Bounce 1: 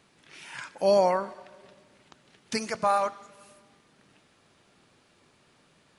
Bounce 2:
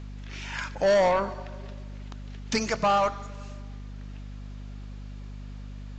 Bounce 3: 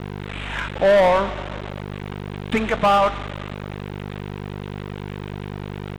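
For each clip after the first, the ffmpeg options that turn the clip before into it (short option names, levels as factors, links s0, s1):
-af "aeval=exprs='val(0)+0.00631*(sin(2*PI*50*n/s)+sin(2*PI*2*50*n/s)/2+sin(2*PI*3*50*n/s)/3+sin(2*PI*4*50*n/s)/4+sin(2*PI*5*50*n/s)/5)':c=same,aresample=16000,asoftclip=type=tanh:threshold=0.0708,aresample=44100,volume=2"
-af "aresample=8000,acrusher=bits=5:mix=0:aa=0.000001,aresample=44100,adynamicsmooth=sensitivity=6:basefreq=2200,volume=2.11"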